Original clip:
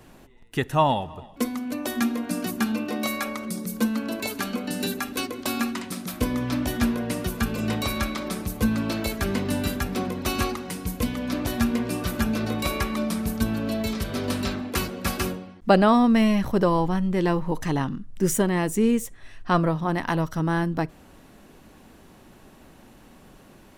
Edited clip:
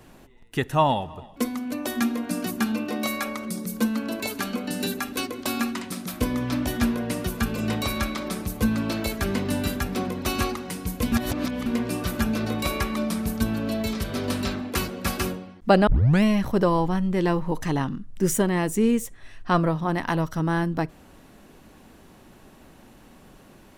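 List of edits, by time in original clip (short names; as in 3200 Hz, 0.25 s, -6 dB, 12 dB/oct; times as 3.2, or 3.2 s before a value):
11.12–11.66 reverse
15.87 tape start 0.36 s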